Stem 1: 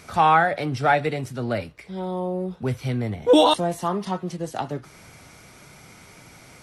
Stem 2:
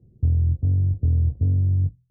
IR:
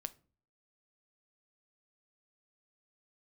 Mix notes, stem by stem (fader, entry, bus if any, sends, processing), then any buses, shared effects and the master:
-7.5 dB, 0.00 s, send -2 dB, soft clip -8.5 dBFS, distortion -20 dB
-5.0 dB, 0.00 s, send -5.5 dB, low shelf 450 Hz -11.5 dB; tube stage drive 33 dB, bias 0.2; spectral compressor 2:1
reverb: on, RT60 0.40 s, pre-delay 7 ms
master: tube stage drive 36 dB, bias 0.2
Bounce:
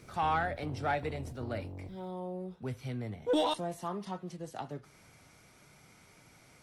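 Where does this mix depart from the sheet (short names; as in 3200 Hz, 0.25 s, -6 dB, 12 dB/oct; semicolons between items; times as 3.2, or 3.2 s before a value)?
stem 1 -7.5 dB -> -16.0 dB; master: missing tube stage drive 36 dB, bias 0.2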